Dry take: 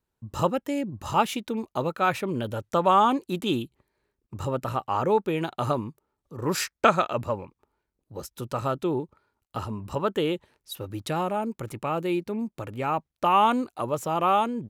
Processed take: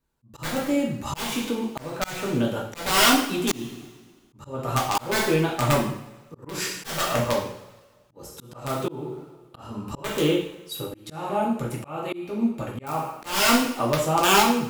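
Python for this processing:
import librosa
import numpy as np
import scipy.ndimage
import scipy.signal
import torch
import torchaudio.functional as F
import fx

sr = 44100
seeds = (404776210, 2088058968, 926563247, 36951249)

y = (np.mod(10.0 ** (15.5 / 20.0) * x + 1.0, 2.0) - 1.0) / 10.0 ** (15.5 / 20.0)
y = fx.rev_double_slope(y, sr, seeds[0], early_s=0.6, late_s=1.8, knee_db=-20, drr_db=-3.0)
y = fx.auto_swell(y, sr, attack_ms=324.0)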